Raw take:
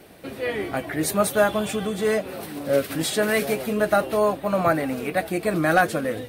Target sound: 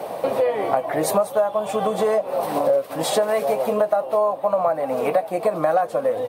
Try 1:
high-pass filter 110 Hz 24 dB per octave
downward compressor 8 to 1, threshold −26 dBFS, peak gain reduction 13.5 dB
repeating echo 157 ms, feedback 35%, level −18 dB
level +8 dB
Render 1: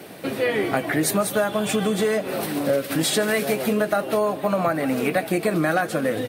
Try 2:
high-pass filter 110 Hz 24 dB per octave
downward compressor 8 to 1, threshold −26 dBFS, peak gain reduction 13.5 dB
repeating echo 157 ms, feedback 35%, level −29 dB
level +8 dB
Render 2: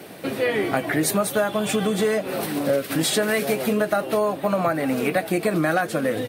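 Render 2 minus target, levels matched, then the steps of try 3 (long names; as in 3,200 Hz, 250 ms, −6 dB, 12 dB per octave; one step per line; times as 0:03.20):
1,000 Hz band −3.5 dB
high-pass filter 110 Hz 24 dB per octave
flat-topped bell 740 Hz +16 dB 1.5 octaves
downward compressor 8 to 1, threshold −26 dBFS, peak gain reduction 25.5 dB
repeating echo 157 ms, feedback 35%, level −29 dB
level +8 dB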